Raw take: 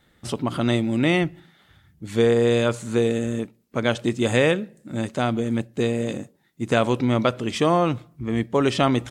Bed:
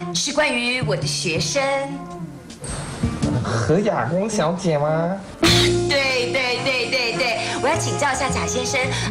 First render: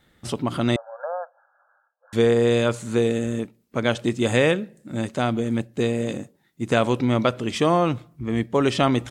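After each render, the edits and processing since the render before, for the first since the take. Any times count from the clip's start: 0.76–2.13 brick-wall FIR band-pass 490–1700 Hz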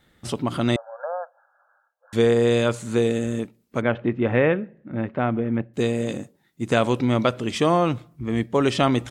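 3.81–5.74 LPF 2300 Hz 24 dB/oct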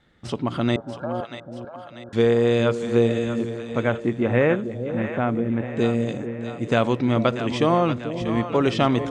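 air absorption 85 m; split-band echo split 570 Hz, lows 0.443 s, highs 0.638 s, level -9 dB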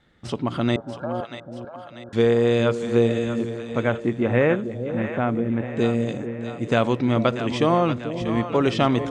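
nothing audible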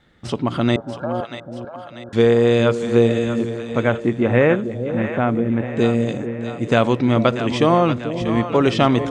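gain +4 dB

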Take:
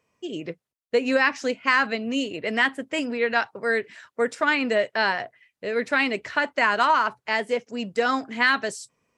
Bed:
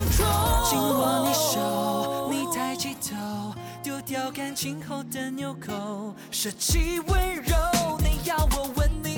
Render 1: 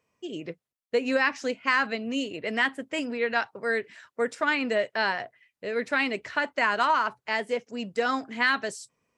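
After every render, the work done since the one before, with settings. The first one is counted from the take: gain -3.5 dB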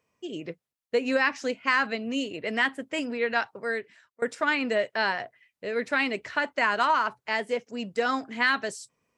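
3.51–4.22 fade out, to -23 dB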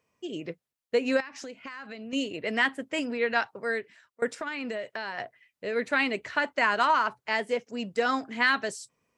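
1.2–2.13 compressor 12:1, threshold -36 dBFS; 4.27–5.18 compressor, threshold -30 dBFS; 5.74–6.29 notch 5300 Hz, Q 8.7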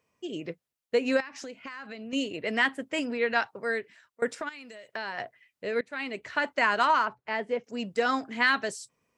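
4.49–4.89 pre-emphasis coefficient 0.8; 5.81–6.47 fade in, from -21.5 dB; 7.05–7.64 tape spacing loss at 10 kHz 22 dB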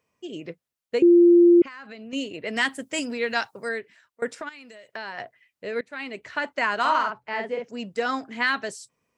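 1.02–1.62 bleep 346 Hz -10.5 dBFS; 2.56–3.69 tone controls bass +3 dB, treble +13 dB; 6.8–7.7 doubler 48 ms -3 dB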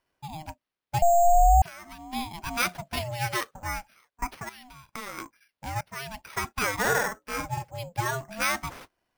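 sample-and-hold 6×; ring modulator with a swept carrier 430 Hz, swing 20%, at 0.45 Hz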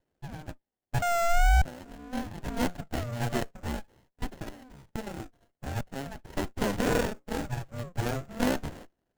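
vibrato 2.2 Hz 36 cents; running maximum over 33 samples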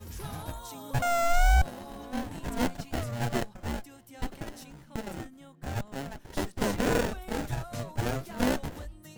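add bed -19.5 dB

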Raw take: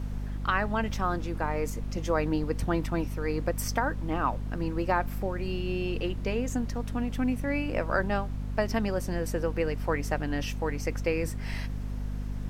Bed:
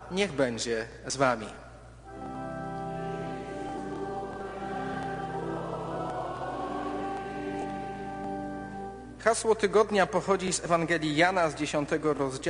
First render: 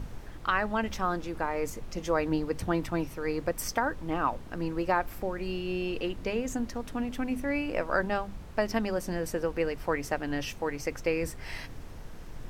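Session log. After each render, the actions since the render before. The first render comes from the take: notches 50/100/150/200/250 Hz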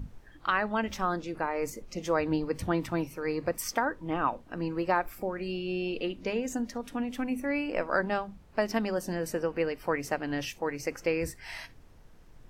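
noise print and reduce 12 dB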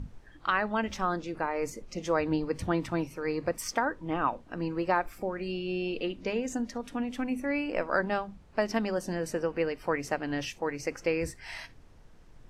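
LPF 10000 Hz 12 dB/oct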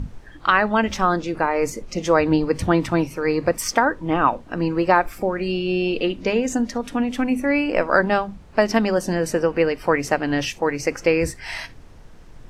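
gain +10.5 dB

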